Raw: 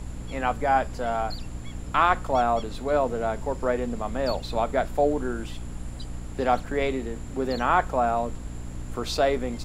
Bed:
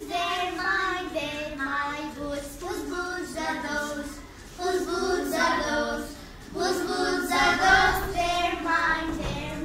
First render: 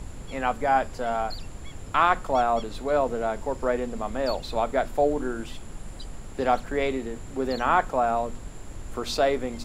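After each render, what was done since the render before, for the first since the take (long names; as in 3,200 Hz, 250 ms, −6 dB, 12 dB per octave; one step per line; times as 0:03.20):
hum removal 60 Hz, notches 5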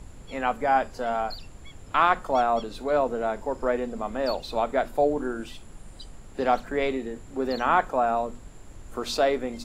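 noise reduction from a noise print 6 dB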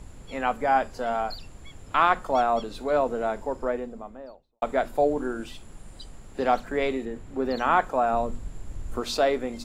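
0:03.28–0:04.62: fade out and dull
0:07.05–0:07.57: bass and treble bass +2 dB, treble −6 dB
0:08.13–0:09.01: low-shelf EQ 170 Hz +10 dB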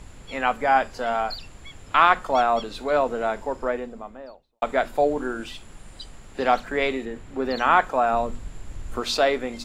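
parametric band 2,600 Hz +6.5 dB 2.9 octaves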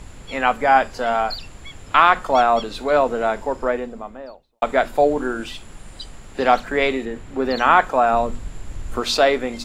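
level +4.5 dB
brickwall limiter −2 dBFS, peak gain reduction 3 dB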